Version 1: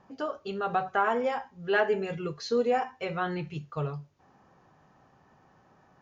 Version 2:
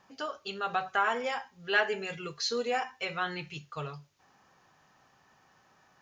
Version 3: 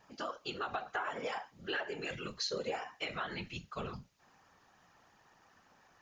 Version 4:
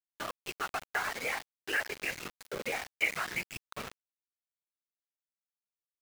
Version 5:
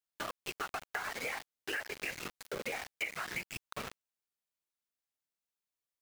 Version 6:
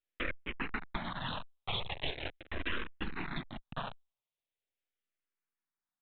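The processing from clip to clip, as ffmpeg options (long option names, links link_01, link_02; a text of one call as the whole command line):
ffmpeg -i in.wav -af "tiltshelf=frequency=1300:gain=-8.5" out.wav
ffmpeg -i in.wav -af "acompressor=threshold=-33dB:ratio=8,afftfilt=real='hypot(re,im)*cos(2*PI*random(0))':imag='hypot(re,im)*sin(2*PI*random(1))':win_size=512:overlap=0.75,volume=4.5dB" out.wav
ffmpeg -i in.wav -af "lowpass=frequency=2200:width_type=q:width=5.5,aeval=exprs='val(0)*gte(abs(val(0)),0.0178)':channel_layout=same" out.wav
ffmpeg -i in.wav -af "acompressor=threshold=-36dB:ratio=6,volume=1.5dB" out.wav
ffmpeg -i in.wav -filter_complex "[0:a]aresample=8000,aeval=exprs='abs(val(0))':channel_layout=same,aresample=44100,asplit=2[link_01][link_02];[link_02]afreqshift=-0.41[link_03];[link_01][link_03]amix=inputs=2:normalize=1,volume=7dB" out.wav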